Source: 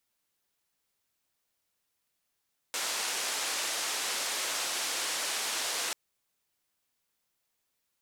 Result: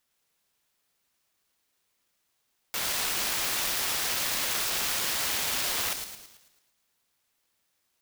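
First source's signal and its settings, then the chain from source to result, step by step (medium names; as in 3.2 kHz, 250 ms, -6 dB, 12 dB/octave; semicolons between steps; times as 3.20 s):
noise band 430–8100 Hz, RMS -33 dBFS 3.19 s
tilt EQ +1.5 dB/octave; on a send: feedback echo behind a high-pass 110 ms, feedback 48%, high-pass 5 kHz, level -3 dB; on the sum: sampling jitter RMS 0.033 ms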